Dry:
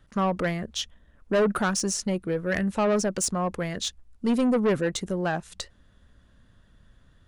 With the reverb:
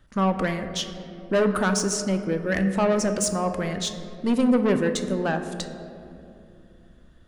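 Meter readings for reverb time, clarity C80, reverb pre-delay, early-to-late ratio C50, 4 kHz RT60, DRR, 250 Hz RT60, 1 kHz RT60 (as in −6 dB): 2.7 s, 10.0 dB, 3 ms, 9.0 dB, 1.3 s, 7.0 dB, 3.6 s, 2.3 s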